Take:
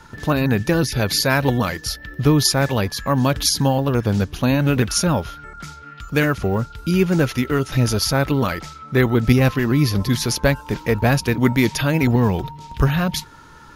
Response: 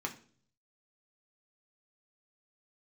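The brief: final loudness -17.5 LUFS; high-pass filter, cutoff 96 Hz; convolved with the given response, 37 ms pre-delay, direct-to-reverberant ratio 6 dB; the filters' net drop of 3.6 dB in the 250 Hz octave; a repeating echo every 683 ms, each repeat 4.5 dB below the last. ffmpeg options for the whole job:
-filter_complex "[0:a]highpass=96,equalizer=f=250:t=o:g=-4.5,aecho=1:1:683|1366|2049|2732|3415|4098|4781|5464|6147:0.596|0.357|0.214|0.129|0.0772|0.0463|0.0278|0.0167|0.01,asplit=2[s0][s1];[1:a]atrim=start_sample=2205,adelay=37[s2];[s1][s2]afir=irnorm=-1:irlink=0,volume=0.376[s3];[s0][s3]amix=inputs=2:normalize=0,volume=1.12"

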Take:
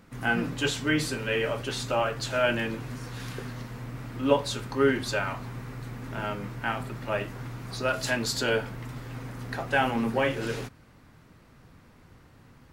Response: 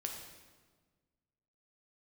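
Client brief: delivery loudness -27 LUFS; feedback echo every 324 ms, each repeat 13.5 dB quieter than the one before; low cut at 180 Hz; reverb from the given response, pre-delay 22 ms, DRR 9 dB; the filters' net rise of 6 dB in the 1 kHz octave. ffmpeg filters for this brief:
-filter_complex "[0:a]highpass=180,equalizer=f=1000:t=o:g=8,aecho=1:1:324|648:0.211|0.0444,asplit=2[s0][s1];[1:a]atrim=start_sample=2205,adelay=22[s2];[s1][s2]afir=irnorm=-1:irlink=0,volume=0.376[s3];[s0][s3]amix=inputs=2:normalize=0,volume=0.891"

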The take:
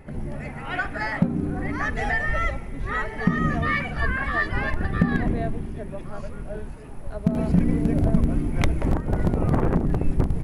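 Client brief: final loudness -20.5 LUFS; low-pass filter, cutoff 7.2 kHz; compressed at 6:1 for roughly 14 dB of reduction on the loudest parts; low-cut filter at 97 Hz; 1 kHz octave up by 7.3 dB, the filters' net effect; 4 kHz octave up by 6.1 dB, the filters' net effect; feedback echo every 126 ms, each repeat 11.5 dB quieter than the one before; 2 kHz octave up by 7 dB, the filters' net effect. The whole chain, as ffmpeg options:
-af "highpass=97,lowpass=7200,equalizer=f=1000:t=o:g=8,equalizer=f=2000:t=o:g=4.5,equalizer=f=4000:t=o:g=6,acompressor=threshold=0.0355:ratio=6,aecho=1:1:126|252|378:0.266|0.0718|0.0194,volume=3.76"

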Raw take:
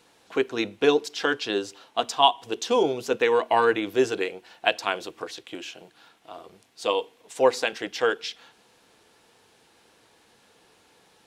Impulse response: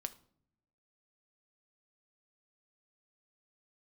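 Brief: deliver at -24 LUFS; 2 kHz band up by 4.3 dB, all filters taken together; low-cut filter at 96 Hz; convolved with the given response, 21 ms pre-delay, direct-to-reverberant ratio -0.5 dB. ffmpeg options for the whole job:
-filter_complex "[0:a]highpass=96,equalizer=f=2000:t=o:g=6,asplit=2[s0][s1];[1:a]atrim=start_sample=2205,adelay=21[s2];[s1][s2]afir=irnorm=-1:irlink=0,volume=1.33[s3];[s0][s3]amix=inputs=2:normalize=0,volume=0.668"

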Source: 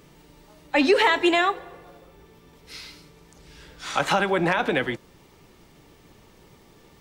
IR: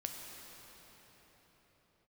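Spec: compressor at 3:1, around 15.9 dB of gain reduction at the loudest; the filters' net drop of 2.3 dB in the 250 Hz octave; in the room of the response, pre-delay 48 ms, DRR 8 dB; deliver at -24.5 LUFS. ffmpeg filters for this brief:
-filter_complex "[0:a]equalizer=f=250:t=o:g=-3.5,acompressor=threshold=0.0126:ratio=3,asplit=2[s0][s1];[1:a]atrim=start_sample=2205,adelay=48[s2];[s1][s2]afir=irnorm=-1:irlink=0,volume=0.422[s3];[s0][s3]amix=inputs=2:normalize=0,volume=4.73"

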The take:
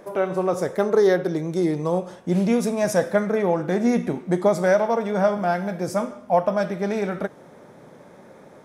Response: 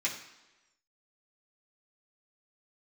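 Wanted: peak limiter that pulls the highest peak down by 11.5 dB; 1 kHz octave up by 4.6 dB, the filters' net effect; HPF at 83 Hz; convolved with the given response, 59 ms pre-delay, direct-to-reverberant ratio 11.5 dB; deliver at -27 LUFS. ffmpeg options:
-filter_complex "[0:a]highpass=83,equalizer=f=1000:t=o:g=6.5,alimiter=limit=0.178:level=0:latency=1,asplit=2[s0][s1];[1:a]atrim=start_sample=2205,adelay=59[s2];[s1][s2]afir=irnorm=-1:irlink=0,volume=0.133[s3];[s0][s3]amix=inputs=2:normalize=0,volume=0.794"

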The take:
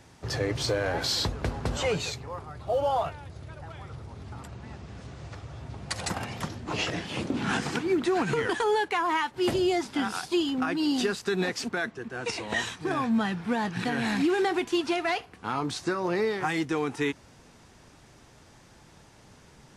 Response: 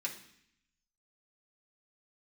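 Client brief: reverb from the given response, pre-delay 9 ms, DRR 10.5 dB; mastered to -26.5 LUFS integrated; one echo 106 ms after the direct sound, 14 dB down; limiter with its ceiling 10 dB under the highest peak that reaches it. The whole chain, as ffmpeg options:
-filter_complex "[0:a]alimiter=level_in=1.26:limit=0.0631:level=0:latency=1,volume=0.794,aecho=1:1:106:0.2,asplit=2[s0][s1];[1:a]atrim=start_sample=2205,adelay=9[s2];[s1][s2]afir=irnorm=-1:irlink=0,volume=0.251[s3];[s0][s3]amix=inputs=2:normalize=0,volume=2.51"

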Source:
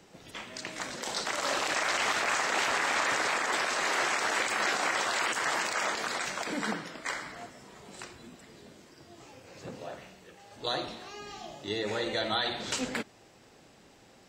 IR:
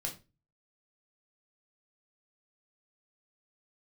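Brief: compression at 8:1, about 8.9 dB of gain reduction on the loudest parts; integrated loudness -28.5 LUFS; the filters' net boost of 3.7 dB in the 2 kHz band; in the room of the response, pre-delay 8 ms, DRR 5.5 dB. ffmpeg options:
-filter_complex "[0:a]equalizer=f=2000:t=o:g=4.5,acompressor=threshold=0.0251:ratio=8,asplit=2[s0][s1];[1:a]atrim=start_sample=2205,adelay=8[s2];[s1][s2]afir=irnorm=-1:irlink=0,volume=0.501[s3];[s0][s3]amix=inputs=2:normalize=0,volume=2"

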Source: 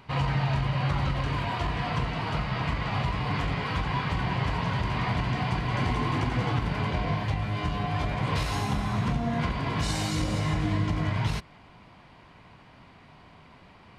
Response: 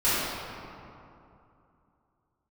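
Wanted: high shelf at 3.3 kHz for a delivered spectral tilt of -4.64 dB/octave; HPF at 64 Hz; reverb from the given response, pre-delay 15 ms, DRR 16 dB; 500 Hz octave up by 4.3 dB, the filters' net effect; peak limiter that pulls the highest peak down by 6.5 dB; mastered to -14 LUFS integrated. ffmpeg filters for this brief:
-filter_complex "[0:a]highpass=64,equalizer=f=500:t=o:g=5.5,highshelf=f=3300:g=4.5,alimiter=limit=0.1:level=0:latency=1,asplit=2[s0][s1];[1:a]atrim=start_sample=2205,adelay=15[s2];[s1][s2]afir=irnorm=-1:irlink=0,volume=0.0251[s3];[s0][s3]amix=inputs=2:normalize=0,volume=5.96"

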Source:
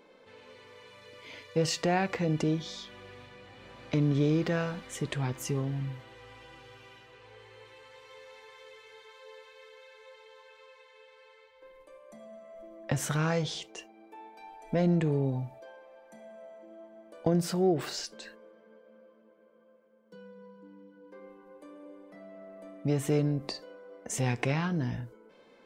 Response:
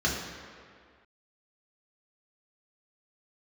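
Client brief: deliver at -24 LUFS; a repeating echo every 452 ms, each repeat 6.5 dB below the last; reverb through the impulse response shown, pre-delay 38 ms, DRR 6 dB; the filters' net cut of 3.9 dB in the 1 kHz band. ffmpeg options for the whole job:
-filter_complex "[0:a]equalizer=f=1000:t=o:g=-6,aecho=1:1:452|904|1356|1808|2260|2712:0.473|0.222|0.105|0.0491|0.0231|0.0109,asplit=2[s0][s1];[1:a]atrim=start_sample=2205,adelay=38[s2];[s1][s2]afir=irnorm=-1:irlink=0,volume=0.133[s3];[s0][s3]amix=inputs=2:normalize=0,volume=1.88"

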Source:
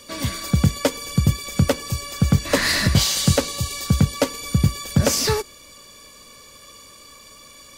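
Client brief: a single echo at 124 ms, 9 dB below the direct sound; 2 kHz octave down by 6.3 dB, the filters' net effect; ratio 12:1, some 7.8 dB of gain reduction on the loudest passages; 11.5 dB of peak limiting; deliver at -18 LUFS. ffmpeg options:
-af "equalizer=f=2000:t=o:g=-7.5,acompressor=threshold=0.112:ratio=12,alimiter=limit=0.119:level=0:latency=1,aecho=1:1:124:0.355,volume=3.35"

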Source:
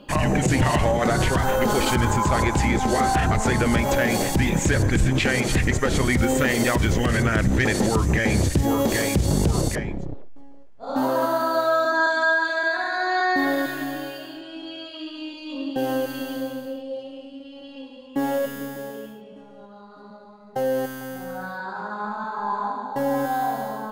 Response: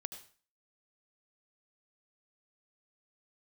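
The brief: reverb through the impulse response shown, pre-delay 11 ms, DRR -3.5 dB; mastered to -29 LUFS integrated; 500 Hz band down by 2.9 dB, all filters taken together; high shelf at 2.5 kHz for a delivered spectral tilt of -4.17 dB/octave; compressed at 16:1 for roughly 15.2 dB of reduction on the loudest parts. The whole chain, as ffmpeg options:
-filter_complex "[0:a]equalizer=f=500:t=o:g=-4,highshelf=f=2500:g=7,acompressor=threshold=0.0282:ratio=16,asplit=2[s0][s1];[1:a]atrim=start_sample=2205,adelay=11[s2];[s1][s2]afir=irnorm=-1:irlink=0,volume=2[s3];[s0][s3]amix=inputs=2:normalize=0"

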